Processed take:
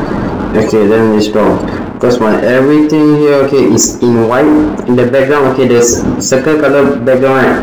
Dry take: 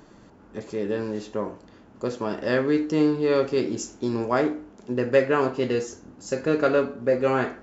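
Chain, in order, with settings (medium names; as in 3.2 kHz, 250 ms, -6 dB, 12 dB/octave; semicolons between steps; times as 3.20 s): reverse; compression 12:1, threshold -32 dBFS, peak gain reduction 19.5 dB; reverse; loudest bins only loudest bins 64; gain riding within 4 dB 0.5 s; waveshaping leveller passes 3; on a send at -18 dB: reverberation RT60 1.9 s, pre-delay 5 ms; on the sum: loudness maximiser +23 dB; trim -1 dB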